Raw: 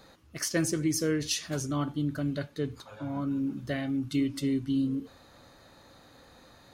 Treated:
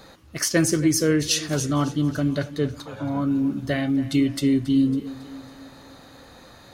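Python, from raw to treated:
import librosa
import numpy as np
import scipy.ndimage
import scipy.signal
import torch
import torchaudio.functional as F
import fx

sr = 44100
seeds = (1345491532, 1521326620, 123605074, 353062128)

y = fx.echo_feedback(x, sr, ms=276, feedback_pct=54, wet_db=-17.0)
y = y * 10.0 ** (8.0 / 20.0)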